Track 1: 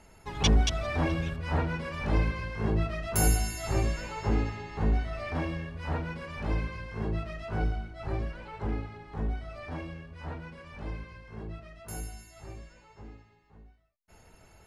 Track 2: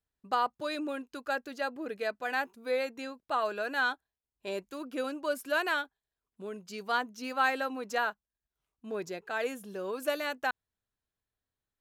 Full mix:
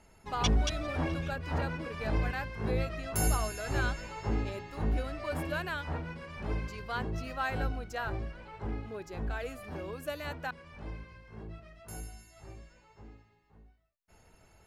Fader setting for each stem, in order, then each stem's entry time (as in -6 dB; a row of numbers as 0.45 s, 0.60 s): -4.5 dB, -6.5 dB; 0.00 s, 0.00 s